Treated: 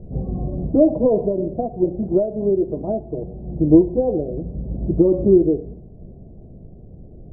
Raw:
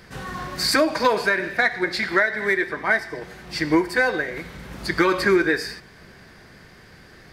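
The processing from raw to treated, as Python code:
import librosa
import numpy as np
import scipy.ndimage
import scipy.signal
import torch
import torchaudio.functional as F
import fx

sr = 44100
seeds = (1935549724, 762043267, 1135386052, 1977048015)

p1 = scipy.signal.sosfilt(scipy.signal.ellip(4, 1.0, 60, 670.0, 'lowpass', fs=sr, output='sos'), x)
p2 = fx.tilt_eq(p1, sr, slope=-3.5)
p3 = fx.rider(p2, sr, range_db=4, speed_s=2.0)
p4 = p2 + (p3 * 10.0 ** (-1.5 / 20.0))
y = p4 * 10.0 ** (-4.0 / 20.0)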